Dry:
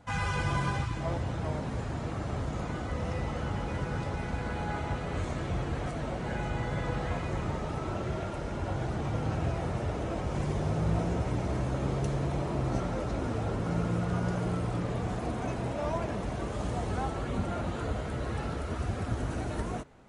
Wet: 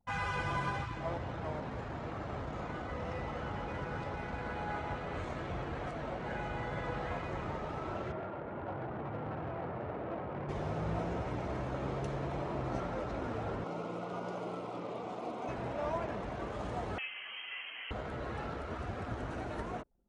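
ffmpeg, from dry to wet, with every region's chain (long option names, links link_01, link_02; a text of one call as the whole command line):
ffmpeg -i in.wav -filter_complex "[0:a]asettb=1/sr,asplit=3[link_01][link_02][link_03];[link_01]atrim=end=8.124[link_04];[link_02]atrim=start=8.12:end=10.49,asetpts=PTS-STARTPTS,afade=type=in:duration=0.004:curve=qsin,afade=type=out:start_time=2.366:duration=0.004:curve=qsin,highpass=100,lowpass=3500,adynamicsmooth=sensitivity=4:basefreq=1800,volume=28.5dB,asoftclip=hard,volume=-28.5dB[link_05];[link_03]atrim=start=10.486[link_06];[link_04][link_05]acrossfade=duration=0.004:curve1=hsin:curve2=qsin[link_07];[link_07][link_06]acrossfade=duration=0.004:curve1=qsin:curve2=hsin,asettb=1/sr,asplit=3[link_08][link_09][link_10];[link_08]atrim=end=13.644[link_11];[link_09]atrim=start=13.64:end=15.49,asetpts=PTS-STARTPTS,afade=type=in:duration=0.004:curve=qsin,afade=type=out:start_time=1.846:duration=0.004:curve=qsin,highpass=240,equalizer=frequency=1700:width_type=o:width=0.33:gain=-15[link_12];[link_10]atrim=start=15.486[link_13];[link_11][link_12]acrossfade=duration=0.004:curve1=hsin:curve2=qsin[link_14];[link_14][link_13]acrossfade=duration=0.004:curve1=qsin:curve2=hsin,asettb=1/sr,asplit=3[link_15][link_16][link_17];[link_15]atrim=end=16.984[link_18];[link_16]atrim=start=16.98:end=17.91,asetpts=PTS-STARTPTS,afade=type=in:duration=0.004:curve=qsin,afade=type=out:start_time=0.926:duration=0.004:curve=qsin,highpass=frequency=170:width=0.5412,highpass=frequency=170:width=1.3066,lowshelf=frequency=460:gain=-12,lowpass=frequency=2900:width_type=q:width=0.5098,lowpass=frequency=2900:width_type=q:width=0.6013,lowpass=frequency=2900:width_type=q:width=0.9,lowpass=frequency=2900:width_type=q:width=2.563,afreqshift=-3400[link_19];[link_17]atrim=start=17.906[link_20];[link_18][link_19]acrossfade=duration=0.004:curve1=hsin:curve2=qsin[link_21];[link_21][link_20]acrossfade=duration=0.004:curve1=qsin:curve2=hsin,anlmdn=0.0251,lowpass=frequency=2300:poles=1,lowshelf=frequency=330:gain=-10" out.wav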